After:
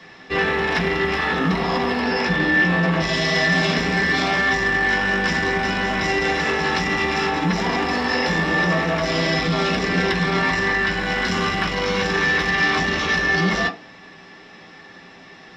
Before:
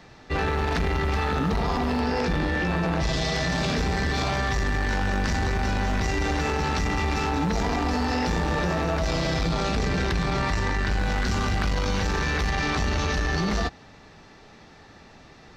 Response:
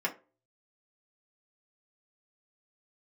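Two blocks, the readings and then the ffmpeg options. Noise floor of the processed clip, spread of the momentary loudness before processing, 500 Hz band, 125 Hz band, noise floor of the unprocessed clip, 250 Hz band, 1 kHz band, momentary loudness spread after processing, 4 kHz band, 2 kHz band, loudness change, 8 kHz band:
-44 dBFS, 1 LU, +5.5 dB, -0.5 dB, -50 dBFS, +4.5 dB, +4.5 dB, 3 LU, +7.5 dB, +11.0 dB, +6.0 dB, +1.5 dB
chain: -filter_complex "[0:a]equalizer=f=3.7k:w=0.9:g=9[a];[1:a]atrim=start_sample=2205[b];[a][b]afir=irnorm=-1:irlink=0,volume=-2dB"

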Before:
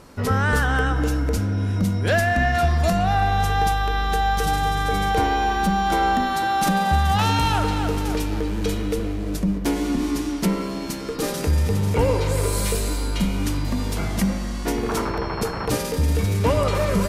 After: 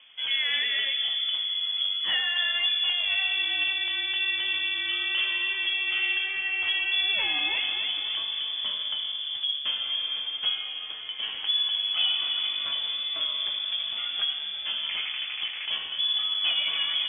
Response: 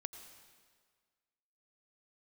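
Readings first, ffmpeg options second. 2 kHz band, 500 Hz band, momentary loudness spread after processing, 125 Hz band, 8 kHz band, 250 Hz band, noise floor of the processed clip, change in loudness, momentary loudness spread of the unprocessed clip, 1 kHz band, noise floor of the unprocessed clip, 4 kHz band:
-1.5 dB, -27.0 dB, 6 LU, under -40 dB, under -40 dB, -31.5 dB, -36 dBFS, -3.0 dB, 6 LU, -23.5 dB, -28 dBFS, +10.5 dB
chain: -af "lowpass=f=3k:t=q:w=0.5098,lowpass=f=3k:t=q:w=0.6013,lowpass=f=3k:t=q:w=0.9,lowpass=f=3k:t=q:w=2.563,afreqshift=-3500,flanger=delay=8.2:depth=7.2:regen=60:speed=0.36:shape=triangular,volume=-3dB"

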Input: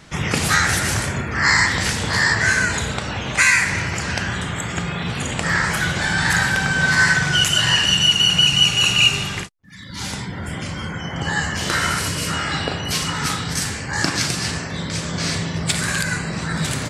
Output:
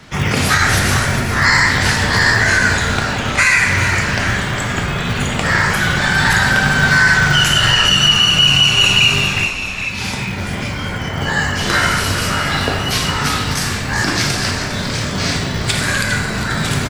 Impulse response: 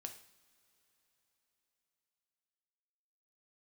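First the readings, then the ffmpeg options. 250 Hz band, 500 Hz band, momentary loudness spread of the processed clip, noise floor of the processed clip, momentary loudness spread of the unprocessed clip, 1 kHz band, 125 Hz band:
+5.0 dB, +6.5 dB, 11 LU, -23 dBFS, 13 LU, +6.0 dB, +6.0 dB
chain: -filter_complex "[0:a]asplit=8[a][b][c][d][e][f][g][h];[b]adelay=405,afreqshift=-110,volume=-10dB[i];[c]adelay=810,afreqshift=-220,volume=-14.9dB[j];[d]adelay=1215,afreqshift=-330,volume=-19.8dB[k];[e]adelay=1620,afreqshift=-440,volume=-24.6dB[l];[f]adelay=2025,afreqshift=-550,volume=-29.5dB[m];[g]adelay=2430,afreqshift=-660,volume=-34.4dB[n];[h]adelay=2835,afreqshift=-770,volume=-39.3dB[o];[a][i][j][k][l][m][n][o]amix=inputs=8:normalize=0[p];[1:a]atrim=start_sample=2205,asetrate=38367,aresample=44100[q];[p][q]afir=irnorm=-1:irlink=0,acrossover=split=200|1400[r][s][t];[r]acrusher=samples=29:mix=1:aa=0.000001[u];[t]equalizer=f=8.2k:t=o:w=0.86:g=-5.5[v];[u][s][v]amix=inputs=3:normalize=0,alimiter=level_in=10.5dB:limit=-1dB:release=50:level=0:latency=1,volume=-1.5dB"

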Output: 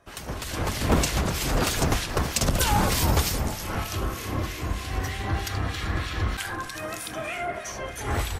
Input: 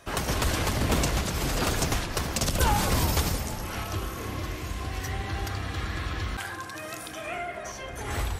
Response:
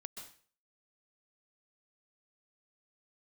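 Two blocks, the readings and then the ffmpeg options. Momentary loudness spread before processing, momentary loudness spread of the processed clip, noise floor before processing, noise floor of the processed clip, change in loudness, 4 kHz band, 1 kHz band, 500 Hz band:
11 LU, 10 LU, -39 dBFS, -37 dBFS, +2.0 dB, +2.0 dB, +2.0 dB, +2.5 dB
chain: -filter_complex "[0:a]asplit=7[a][b][c][d][e][f][g];[b]adelay=427,afreqshift=-92,volume=-19dB[h];[c]adelay=854,afreqshift=-184,volume=-23.2dB[i];[d]adelay=1281,afreqshift=-276,volume=-27.3dB[j];[e]adelay=1708,afreqshift=-368,volume=-31.5dB[k];[f]adelay=2135,afreqshift=-460,volume=-35.6dB[l];[g]adelay=2562,afreqshift=-552,volume=-39.8dB[m];[a][h][i][j][k][l][m]amix=inputs=7:normalize=0,acrossover=split=1800[n][o];[n]aeval=exprs='val(0)*(1-0.7/2+0.7/2*cos(2*PI*3.2*n/s))':c=same[p];[o]aeval=exprs='val(0)*(1-0.7/2-0.7/2*cos(2*PI*3.2*n/s))':c=same[q];[p][q]amix=inputs=2:normalize=0,dynaudnorm=f=430:g=3:m=12dB,volume=-5.5dB"

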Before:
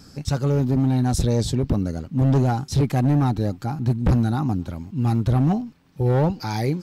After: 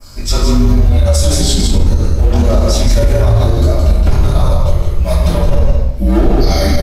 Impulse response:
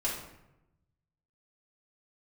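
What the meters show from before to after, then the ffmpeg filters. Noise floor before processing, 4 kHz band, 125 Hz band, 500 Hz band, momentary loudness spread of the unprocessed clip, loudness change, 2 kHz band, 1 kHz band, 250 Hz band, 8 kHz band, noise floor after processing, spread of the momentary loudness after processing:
-48 dBFS, +16.0 dB, +7.5 dB, +10.0 dB, 6 LU, +9.0 dB, +9.5 dB, +5.0 dB, +4.0 dB, +15.5 dB, -18 dBFS, 4 LU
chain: -filter_complex "[0:a]bandreject=f=60:t=h:w=6,bandreject=f=120:t=h:w=6,bandreject=f=180:t=h:w=6,flanger=delay=19.5:depth=4.8:speed=1.1,highpass=49,afreqshift=-180,highshelf=f=10k:g=10,aecho=1:1:167:0.631[a];[1:a]atrim=start_sample=2205,afade=t=out:st=0.32:d=0.01,atrim=end_sample=14553,asetrate=37926,aresample=44100[b];[a][b]afir=irnorm=-1:irlink=0,adynamicequalizer=threshold=0.00631:dfrequency=4500:dqfactor=0.71:tfrequency=4500:tqfactor=0.71:attack=5:release=100:ratio=0.375:range=2.5:mode=boostabove:tftype=bell,alimiter=level_in=9.5dB:limit=-1dB:release=50:level=0:latency=1,volume=-1dB"

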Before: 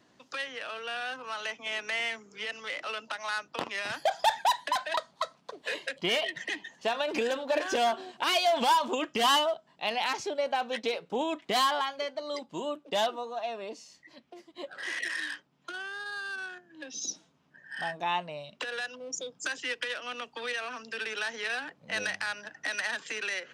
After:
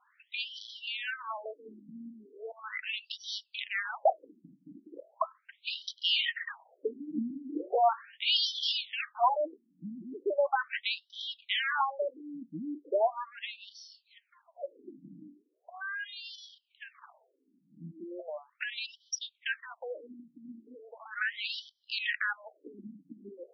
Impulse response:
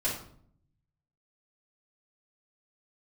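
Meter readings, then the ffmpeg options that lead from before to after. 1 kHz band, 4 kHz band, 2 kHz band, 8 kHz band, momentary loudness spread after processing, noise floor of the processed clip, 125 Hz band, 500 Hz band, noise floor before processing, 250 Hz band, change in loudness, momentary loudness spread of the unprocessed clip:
-4.5 dB, -1.0 dB, -4.0 dB, -9.0 dB, 22 LU, -75 dBFS, -3.0 dB, -3.0 dB, -66 dBFS, -2.0 dB, -2.0 dB, 12 LU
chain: -af "aeval=exprs='0.188*(cos(1*acos(clip(val(0)/0.188,-1,1)))-cos(1*PI/2))+0.0596*(cos(2*acos(clip(val(0)/0.188,-1,1)))-cos(2*PI/2))+0.0188*(cos(4*acos(clip(val(0)/0.188,-1,1)))-cos(4*PI/2))+0.0299*(cos(6*acos(clip(val(0)/0.188,-1,1)))-cos(6*PI/2))':c=same,afftfilt=real='re*between(b*sr/1024,220*pow(4300/220,0.5+0.5*sin(2*PI*0.38*pts/sr))/1.41,220*pow(4300/220,0.5+0.5*sin(2*PI*0.38*pts/sr))*1.41)':imag='im*between(b*sr/1024,220*pow(4300/220,0.5+0.5*sin(2*PI*0.38*pts/sr))/1.41,220*pow(4300/220,0.5+0.5*sin(2*PI*0.38*pts/sr))*1.41)':win_size=1024:overlap=0.75,volume=3dB"

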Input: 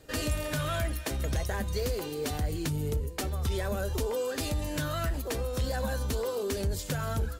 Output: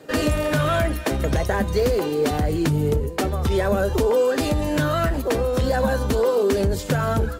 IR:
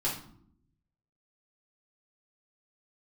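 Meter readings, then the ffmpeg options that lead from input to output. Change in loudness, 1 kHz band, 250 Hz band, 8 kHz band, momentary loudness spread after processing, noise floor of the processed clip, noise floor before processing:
+10.5 dB, +12.0 dB, +12.5 dB, +3.5 dB, 3 LU, -30 dBFS, -38 dBFS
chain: -filter_complex "[0:a]highshelf=f=2.6k:g=-11,acrossover=split=140[a][b];[a]aeval=exprs='sgn(val(0))*max(abs(val(0))-0.00211,0)':c=same[c];[b]acontrast=78[d];[c][d]amix=inputs=2:normalize=0,volume=6.5dB"

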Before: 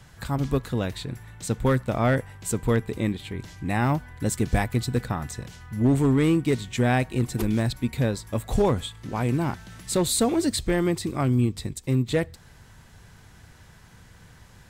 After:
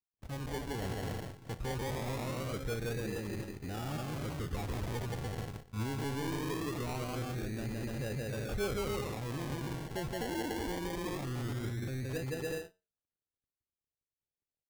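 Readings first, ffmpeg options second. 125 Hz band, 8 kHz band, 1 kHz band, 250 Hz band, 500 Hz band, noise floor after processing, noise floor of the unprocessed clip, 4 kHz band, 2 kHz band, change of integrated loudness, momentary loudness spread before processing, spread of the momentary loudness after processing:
-12.0 dB, -14.5 dB, -11.0 dB, -14.5 dB, -11.5 dB, under -85 dBFS, -51 dBFS, -10.0 dB, -10.0 dB, -12.5 dB, 10 LU, 4 LU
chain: -filter_complex "[0:a]aeval=exprs='sgn(val(0))*max(abs(val(0))-0.00596,0)':c=same,asplit=2[a][b];[b]aecho=0:1:170|289|372.3|430.6|471.4:0.631|0.398|0.251|0.158|0.1[c];[a][c]amix=inputs=2:normalize=0,agate=range=-33dB:threshold=-30dB:ratio=3:detection=peak,aresample=8000,aresample=44100,asoftclip=type=tanh:threshold=-15.5dB,alimiter=level_in=2.5dB:limit=-24dB:level=0:latency=1:release=14,volume=-2.5dB,aecho=1:1:2.2:0.33,flanger=delay=9.4:depth=5.5:regen=77:speed=0.17:shape=sinusoidal,asuperstop=centerf=950:order=8:qfactor=4.2,acrusher=samples=28:mix=1:aa=0.000001:lfo=1:lforange=16.8:lforate=0.22"

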